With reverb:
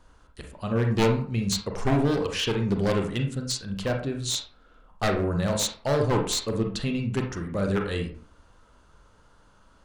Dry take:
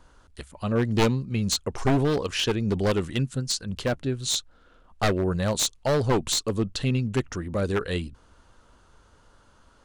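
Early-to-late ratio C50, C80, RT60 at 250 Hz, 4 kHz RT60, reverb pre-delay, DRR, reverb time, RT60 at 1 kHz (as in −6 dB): 6.5 dB, 11.5 dB, 0.40 s, 0.30 s, 33 ms, 2.5 dB, 0.45 s, 0.50 s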